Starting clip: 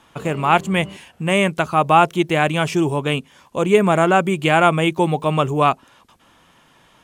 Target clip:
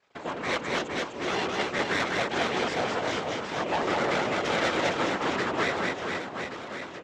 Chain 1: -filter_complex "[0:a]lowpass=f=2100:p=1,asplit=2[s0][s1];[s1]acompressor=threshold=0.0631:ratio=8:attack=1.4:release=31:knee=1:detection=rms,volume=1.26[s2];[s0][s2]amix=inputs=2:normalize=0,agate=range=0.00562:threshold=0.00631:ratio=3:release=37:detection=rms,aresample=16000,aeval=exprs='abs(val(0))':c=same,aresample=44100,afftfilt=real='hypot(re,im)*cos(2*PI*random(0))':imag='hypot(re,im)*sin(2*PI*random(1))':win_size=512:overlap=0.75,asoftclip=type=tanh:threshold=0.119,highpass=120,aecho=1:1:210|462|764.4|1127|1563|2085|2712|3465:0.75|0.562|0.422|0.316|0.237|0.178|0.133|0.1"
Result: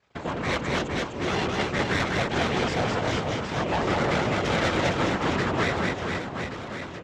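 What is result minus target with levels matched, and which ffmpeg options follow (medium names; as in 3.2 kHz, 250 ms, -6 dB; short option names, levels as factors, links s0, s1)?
compression: peak gain reduction -10 dB; 125 Hz band +9.0 dB
-filter_complex "[0:a]lowpass=f=2100:p=1,asplit=2[s0][s1];[s1]acompressor=threshold=0.0168:ratio=8:attack=1.4:release=31:knee=1:detection=rms,volume=1.26[s2];[s0][s2]amix=inputs=2:normalize=0,agate=range=0.00562:threshold=0.00631:ratio=3:release=37:detection=rms,aresample=16000,aeval=exprs='abs(val(0))':c=same,aresample=44100,afftfilt=real='hypot(re,im)*cos(2*PI*random(0))':imag='hypot(re,im)*sin(2*PI*random(1))':win_size=512:overlap=0.75,asoftclip=type=tanh:threshold=0.119,highpass=270,aecho=1:1:210|462|764.4|1127|1563|2085|2712|3465:0.75|0.562|0.422|0.316|0.237|0.178|0.133|0.1"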